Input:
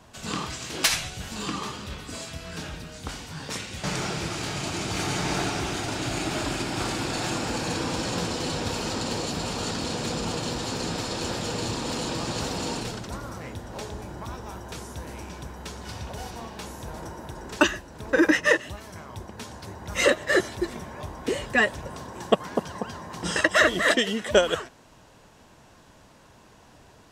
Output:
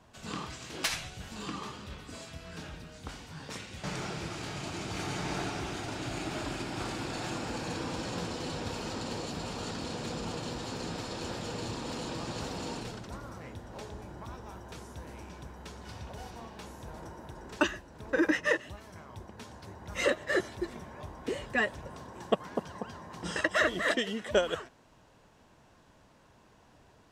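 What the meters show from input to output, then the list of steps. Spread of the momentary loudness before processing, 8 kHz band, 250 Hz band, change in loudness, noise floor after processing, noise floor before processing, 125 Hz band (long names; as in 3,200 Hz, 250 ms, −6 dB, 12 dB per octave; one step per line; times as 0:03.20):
16 LU, −11.0 dB, −7.0 dB, −8.0 dB, −61 dBFS, −53 dBFS, −7.0 dB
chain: high-shelf EQ 4,500 Hz −5.5 dB
level −7 dB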